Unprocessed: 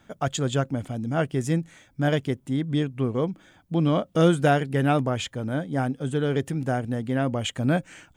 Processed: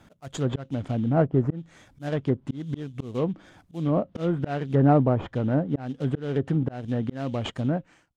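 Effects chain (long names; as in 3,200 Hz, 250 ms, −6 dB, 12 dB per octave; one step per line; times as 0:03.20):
fade-out on the ending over 1.06 s
volume swells 373 ms
in parallel at −3.5 dB: sample-rate reduction 3,400 Hz, jitter 20%
on the sum: treble cut that deepens with the level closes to 1,000 Hz, closed at −19 dBFS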